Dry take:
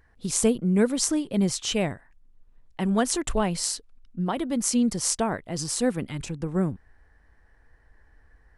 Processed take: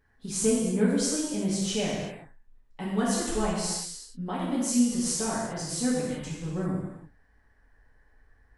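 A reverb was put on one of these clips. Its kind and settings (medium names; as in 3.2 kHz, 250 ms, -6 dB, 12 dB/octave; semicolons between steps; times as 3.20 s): gated-style reverb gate 410 ms falling, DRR -7.5 dB; trim -11 dB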